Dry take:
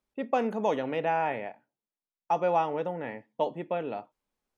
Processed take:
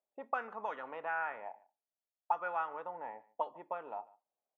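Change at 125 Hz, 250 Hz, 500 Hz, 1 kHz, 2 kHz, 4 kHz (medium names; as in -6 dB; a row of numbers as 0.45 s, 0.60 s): under -25 dB, -22.0 dB, -14.5 dB, -7.5 dB, -2.5 dB, under -15 dB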